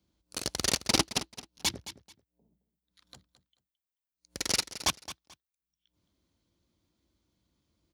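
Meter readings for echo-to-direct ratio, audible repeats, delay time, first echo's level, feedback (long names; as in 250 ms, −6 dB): −14.0 dB, 2, 218 ms, −14.0 dB, 22%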